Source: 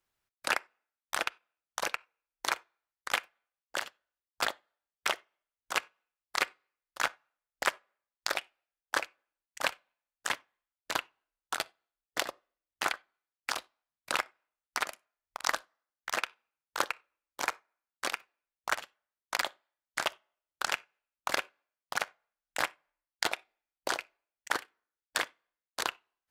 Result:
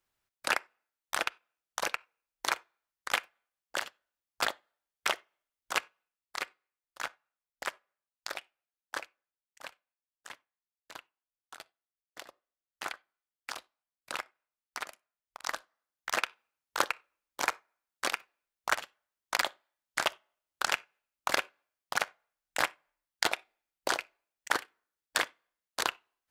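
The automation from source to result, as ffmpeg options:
ffmpeg -i in.wav -af "volume=17.5dB,afade=type=out:start_time=5.73:duration=0.69:silence=0.421697,afade=type=out:start_time=8.97:duration=0.66:silence=0.398107,afade=type=in:start_time=12.22:duration=0.72:silence=0.375837,afade=type=in:start_time=15.43:duration=0.78:silence=0.375837" out.wav

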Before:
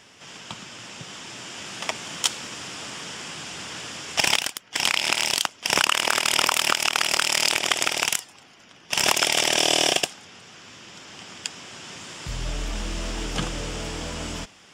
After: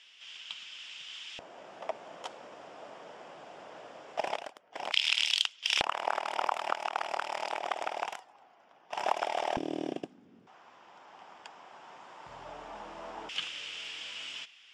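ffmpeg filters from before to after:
ffmpeg -i in.wav -af "asetnsamples=nb_out_samples=441:pad=0,asendcmd='1.39 bandpass f 630;4.92 bandpass f 3300;5.81 bandpass f 770;9.57 bandpass f 260;10.47 bandpass f 840;13.29 bandpass f 2900',bandpass=frequency=3100:width_type=q:width=2.6:csg=0" out.wav

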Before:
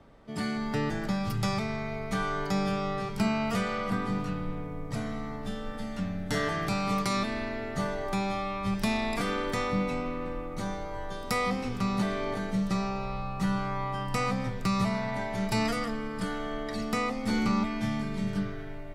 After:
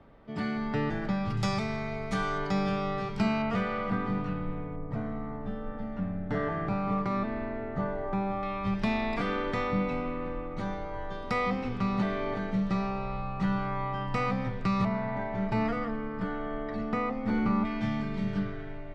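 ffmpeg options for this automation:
ffmpeg -i in.wav -af "asetnsamples=nb_out_samples=441:pad=0,asendcmd='1.37 lowpass f 7500;2.38 lowpass f 4500;3.42 lowpass f 2600;4.76 lowpass f 1400;8.43 lowpass f 3100;14.85 lowpass f 1800;17.65 lowpass f 3600',lowpass=3100" out.wav

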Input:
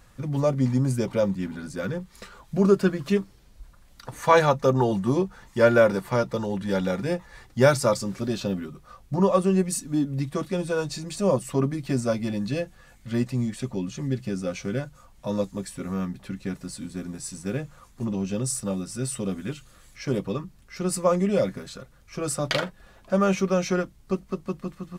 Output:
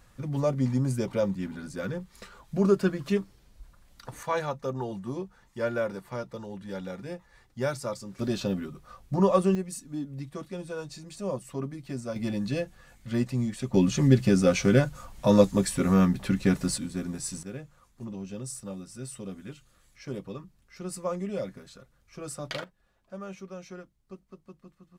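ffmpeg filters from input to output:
ffmpeg -i in.wav -af "asetnsamples=nb_out_samples=441:pad=0,asendcmd='4.23 volume volume -11.5dB;8.19 volume volume -1.5dB;9.55 volume volume -10dB;12.16 volume volume -2dB;13.74 volume volume 8dB;16.78 volume volume 1dB;17.43 volume volume -10dB;22.64 volume volume -18.5dB',volume=-3.5dB" out.wav

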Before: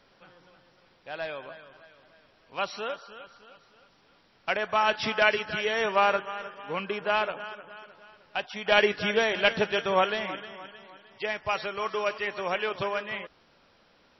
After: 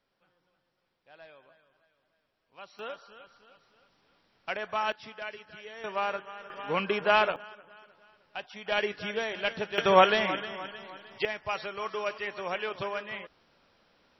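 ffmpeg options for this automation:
ffmpeg -i in.wav -af "asetnsamples=nb_out_samples=441:pad=0,asendcmd='2.79 volume volume -6dB;4.92 volume volume -17dB;5.84 volume volume -8dB;6.5 volume volume 3dB;7.36 volume volume -7.5dB;9.78 volume volume 4.5dB;11.25 volume volume -4dB',volume=-17dB" out.wav

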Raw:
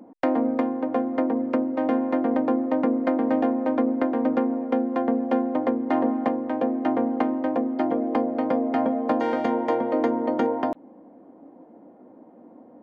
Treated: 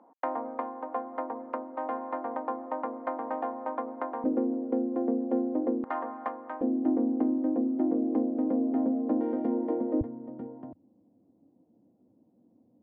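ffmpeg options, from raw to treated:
ffmpeg -i in.wav -af "asetnsamples=nb_out_samples=441:pad=0,asendcmd='4.24 bandpass f 350;5.84 bandpass f 1200;6.61 bandpass f 300;10.01 bandpass f 100',bandpass=frequency=1000:width_type=q:width=2.3:csg=0" out.wav

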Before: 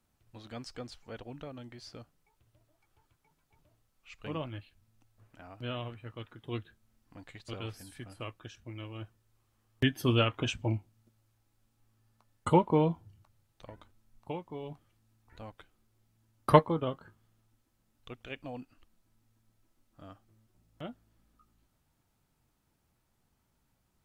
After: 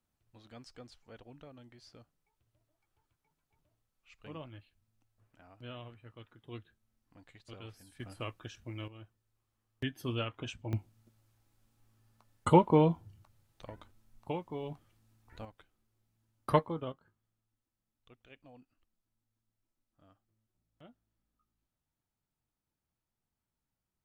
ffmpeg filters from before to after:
ffmpeg -i in.wav -af "asetnsamples=nb_out_samples=441:pad=0,asendcmd='8 volume volume 1dB;8.88 volume volume -9dB;10.73 volume volume 1.5dB;15.45 volume volume -6.5dB;16.92 volume volume -14.5dB',volume=-8.5dB" out.wav

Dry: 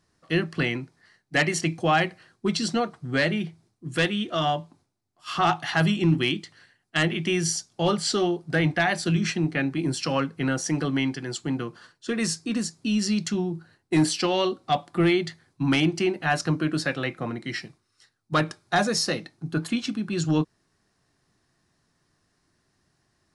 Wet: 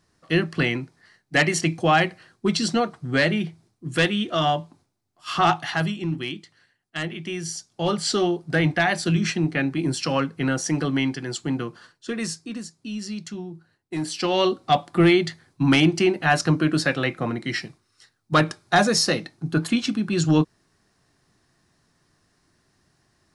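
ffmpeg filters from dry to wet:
ffmpeg -i in.wav -af "volume=23dB,afade=type=out:start_time=5.5:duration=0.45:silence=0.354813,afade=type=in:start_time=7.47:duration=0.69:silence=0.398107,afade=type=out:start_time=11.66:duration=0.97:silence=0.334965,afade=type=in:start_time=14.05:duration=0.42:silence=0.251189" out.wav

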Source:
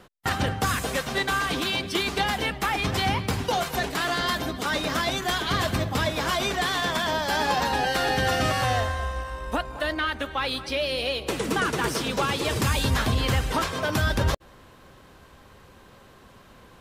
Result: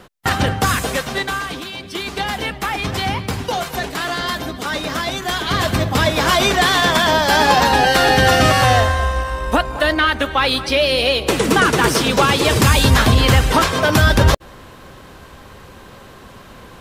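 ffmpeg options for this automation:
ffmpeg -i in.wav -af "volume=23.5dB,afade=type=out:start_time=0.73:duration=0.98:silence=0.237137,afade=type=in:start_time=1.71:duration=0.65:silence=0.398107,afade=type=in:start_time=5.21:duration=1.19:silence=0.421697" out.wav

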